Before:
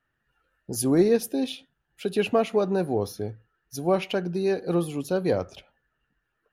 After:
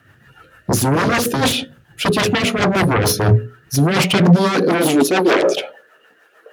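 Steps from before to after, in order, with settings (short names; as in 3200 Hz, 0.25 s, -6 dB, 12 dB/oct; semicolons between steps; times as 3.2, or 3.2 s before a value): notches 60/120/180/240/300/360/420/480/540/600 Hz; reverse; compressor 8:1, threshold -29 dBFS, peak gain reduction 13 dB; reverse; sine folder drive 16 dB, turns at -19 dBFS; high-pass sweep 100 Hz -> 510 Hz, 3.51–5.84; rotary speaker horn 6.7 Hz; gain +8 dB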